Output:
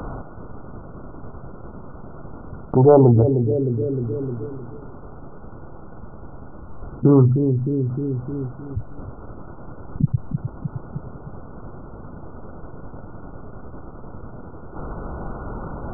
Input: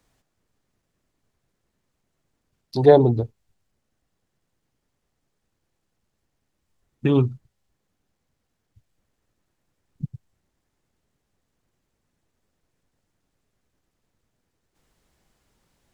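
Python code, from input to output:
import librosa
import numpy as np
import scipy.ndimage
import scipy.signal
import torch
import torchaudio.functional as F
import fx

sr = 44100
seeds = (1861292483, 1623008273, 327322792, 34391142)

y = fx.tracing_dist(x, sr, depth_ms=0.051)
y = fx.brickwall_lowpass(y, sr, high_hz=1500.0)
y = fx.echo_bbd(y, sr, ms=307, stages=1024, feedback_pct=37, wet_db=-21.5)
y = fx.env_flatten(y, sr, amount_pct=70)
y = F.gain(torch.from_numpy(y), -1.0).numpy()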